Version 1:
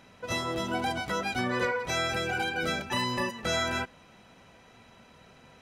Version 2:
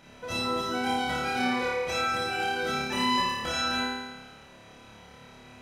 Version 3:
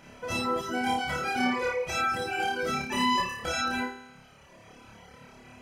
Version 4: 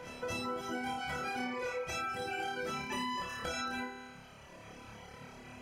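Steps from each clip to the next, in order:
de-hum 56.61 Hz, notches 40; compressor 1.5:1, threshold -39 dBFS, peak gain reduction 5.5 dB; flutter echo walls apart 4.8 m, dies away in 1.2 s
notch 3800 Hz, Q 5.8; reverb removal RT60 1.2 s; gain +2.5 dB
compressor 5:1, threshold -36 dBFS, peak gain reduction 13 dB; on a send: reverse echo 0.234 s -11.5 dB

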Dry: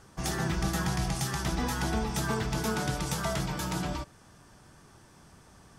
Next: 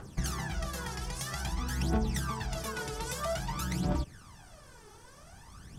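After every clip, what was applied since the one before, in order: compressor, threshold -35 dBFS, peak gain reduction 10 dB; phaser 0.51 Hz, delay 2.4 ms, feedback 73%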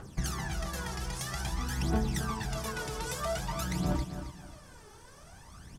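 feedback echo 0.27 s, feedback 31%, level -10 dB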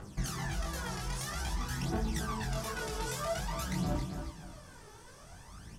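in parallel at 0 dB: limiter -29 dBFS, peak gain reduction 11 dB; on the sum: chorus 1.4 Hz, delay 18.5 ms, depth 5 ms; gain -3 dB

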